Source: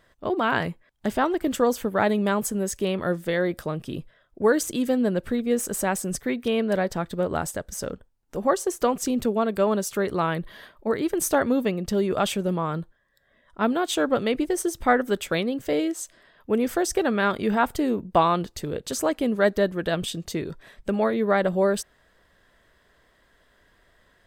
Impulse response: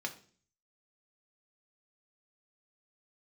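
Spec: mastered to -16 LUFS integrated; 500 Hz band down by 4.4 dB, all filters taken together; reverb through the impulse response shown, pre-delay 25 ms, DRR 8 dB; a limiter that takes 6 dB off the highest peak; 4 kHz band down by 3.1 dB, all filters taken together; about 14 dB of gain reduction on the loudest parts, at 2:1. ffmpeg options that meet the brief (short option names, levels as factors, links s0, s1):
-filter_complex "[0:a]equalizer=f=500:t=o:g=-5.5,equalizer=f=4000:t=o:g=-4,acompressor=threshold=0.00631:ratio=2,alimiter=level_in=1.68:limit=0.0631:level=0:latency=1,volume=0.596,asplit=2[s0][s1];[1:a]atrim=start_sample=2205,adelay=25[s2];[s1][s2]afir=irnorm=-1:irlink=0,volume=0.316[s3];[s0][s3]amix=inputs=2:normalize=0,volume=14.1"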